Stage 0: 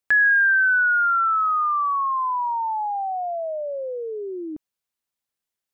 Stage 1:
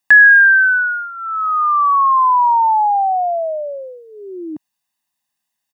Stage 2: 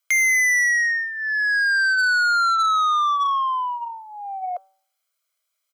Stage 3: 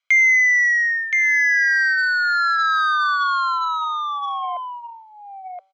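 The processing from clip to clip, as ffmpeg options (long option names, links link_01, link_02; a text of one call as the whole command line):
ffmpeg -i in.wav -af "highpass=160,aecho=1:1:1.1:0.87,volume=6.5dB" out.wav
ffmpeg -i in.wav -af "afreqshift=410,bandreject=frequency=191.8:width_type=h:width=4,bandreject=frequency=383.6:width_type=h:width=4,bandreject=frequency=575.4:width_type=h:width=4,bandreject=frequency=767.2:width_type=h:width=4,bandreject=frequency=959:width_type=h:width=4,bandreject=frequency=1150.8:width_type=h:width=4,bandreject=frequency=1342.6:width_type=h:width=4,bandreject=frequency=1534.4:width_type=h:width=4,asoftclip=type=tanh:threshold=-17dB" out.wav
ffmpeg -i in.wav -af "highpass=500,equalizer=frequency=2200:width_type=q:width=4:gain=7,equalizer=frequency=3300:width_type=q:width=4:gain=3,equalizer=frequency=5300:width_type=q:width=4:gain=-5,lowpass=frequency=5500:width=0.5412,lowpass=frequency=5500:width=1.3066,aecho=1:1:1022:0.631,volume=-1.5dB" out.wav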